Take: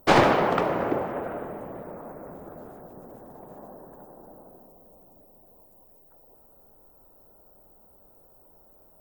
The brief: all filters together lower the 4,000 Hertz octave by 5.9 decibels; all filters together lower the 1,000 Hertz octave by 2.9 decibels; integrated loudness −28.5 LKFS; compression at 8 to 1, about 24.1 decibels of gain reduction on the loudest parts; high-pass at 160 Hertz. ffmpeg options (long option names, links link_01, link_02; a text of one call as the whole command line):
ffmpeg -i in.wav -af "highpass=160,equalizer=frequency=1000:width_type=o:gain=-3.5,equalizer=frequency=4000:width_type=o:gain=-8,acompressor=threshold=-41dB:ratio=8,volume=19.5dB" out.wav